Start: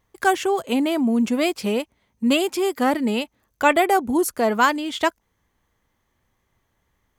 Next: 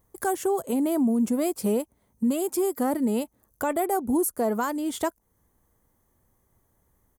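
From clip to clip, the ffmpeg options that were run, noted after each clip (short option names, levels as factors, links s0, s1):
-af "firequalizer=gain_entry='entry(440,0);entry(2600,-15);entry(9300,7)':delay=0.05:min_phase=1,alimiter=limit=0.106:level=0:latency=1:release=323,volume=1.33"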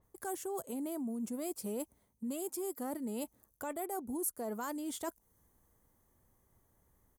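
-af "areverse,acompressor=threshold=0.0178:ratio=4,areverse,adynamicequalizer=threshold=0.00112:dfrequency=4100:dqfactor=0.7:tfrequency=4100:tqfactor=0.7:attack=5:release=100:ratio=0.375:range=2.5:mode=boostabove:tftype=highshelf,volume=0.668"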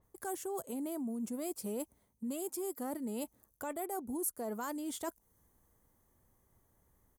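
-af anull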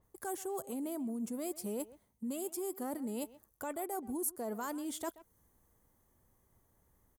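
-filter_complex "[0:a]asplit=2[s0][s1];[s1]adelay=130,highpass=300,lowpass=3400,asoftclip=type=hard:threshold=0.0237,volume=0.141[s2];[s0][s2]amix=inputs=2:normalize=0"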